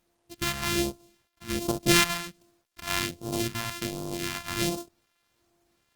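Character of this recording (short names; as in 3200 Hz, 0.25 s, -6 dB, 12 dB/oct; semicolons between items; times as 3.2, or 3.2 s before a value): a buzz of ramps at a fixed pitch in blocks of 128 samples; phasing stages 2, 1.3 Hz, lowest notch 370–1900 Hz; a quantiser's noise floor 12-bit, dither none; Opus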